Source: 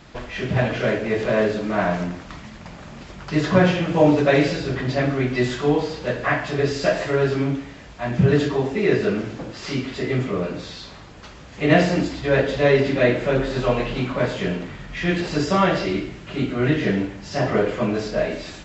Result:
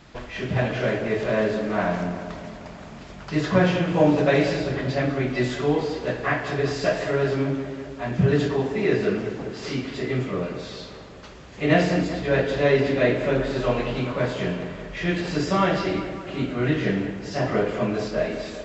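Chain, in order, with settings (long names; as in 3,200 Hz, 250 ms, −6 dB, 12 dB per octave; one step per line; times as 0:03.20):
tape delay 195 ms, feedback 71%, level −9.5 dB, low-pass 2,400 Hz
level −3 dB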